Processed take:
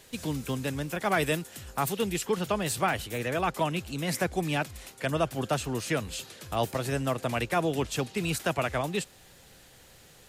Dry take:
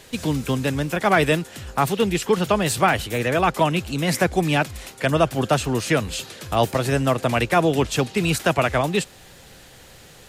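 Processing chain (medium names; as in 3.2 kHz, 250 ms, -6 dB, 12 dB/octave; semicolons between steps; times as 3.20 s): treble shelf 7.6 kHz +6 dB, from 1.12 s +11.5 dB, from 2.22 s +4.5 dB; trim -9 dB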